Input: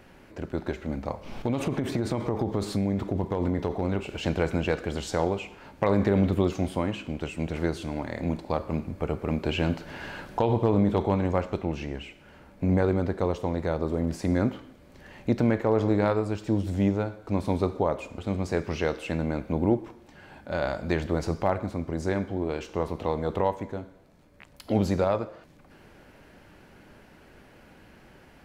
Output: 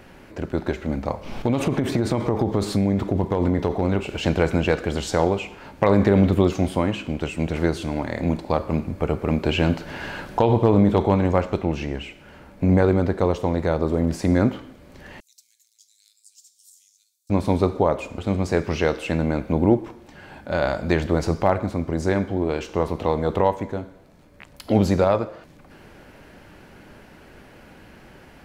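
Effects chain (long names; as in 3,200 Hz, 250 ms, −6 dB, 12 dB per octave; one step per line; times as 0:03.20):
0:15.20–0:17.30: inverse Chebyshev high-pass filter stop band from 1,100 Hz, stop band 80 dB
level +6 dB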